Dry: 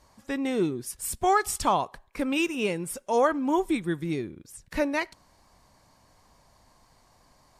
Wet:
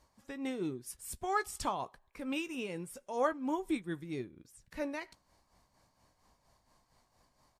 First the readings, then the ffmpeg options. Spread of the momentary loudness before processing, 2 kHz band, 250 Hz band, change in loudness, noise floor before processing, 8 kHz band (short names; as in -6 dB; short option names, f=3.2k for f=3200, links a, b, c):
11 LU, -9.5 dB, -9.5 dB, -10.0 dB, -62 dBFS, -11.5 dB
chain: -filter_complex "[0:a]tremolo=f=4.3:d=0.57,asplit=2[a][b];[b]adelay=16,volume=-13.5dB[c];[a][c]amix=inputs=2:normalize=0,volume=-7.5dB"